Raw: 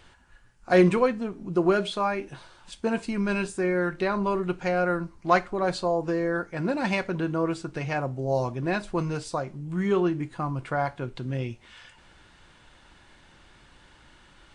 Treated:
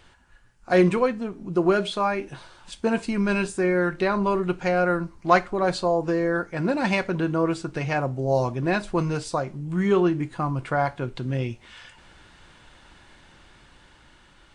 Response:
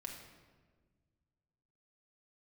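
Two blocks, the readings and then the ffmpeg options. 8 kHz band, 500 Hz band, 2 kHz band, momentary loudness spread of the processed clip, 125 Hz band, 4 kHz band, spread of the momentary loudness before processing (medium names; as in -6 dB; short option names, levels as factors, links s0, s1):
+3.0 dB, +2.5 dB, +3.0 dB, 8 LU, +3.0 dB, +2.5 dB, 9 LU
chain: -af "dynaudnorm=f=500:g=7:m=1.5"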